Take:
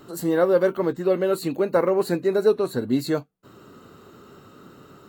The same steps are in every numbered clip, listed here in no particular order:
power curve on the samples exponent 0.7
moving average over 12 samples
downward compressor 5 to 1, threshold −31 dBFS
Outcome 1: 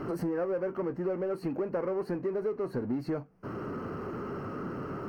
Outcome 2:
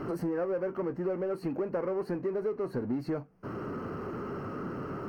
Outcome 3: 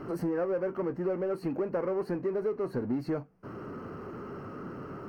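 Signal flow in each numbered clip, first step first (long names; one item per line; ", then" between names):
power curve on the samples, then moving average, then downward compressor
power curve on the samples, then downward compressor, then moving average
downward compressor, then power curve on the samples, then moving average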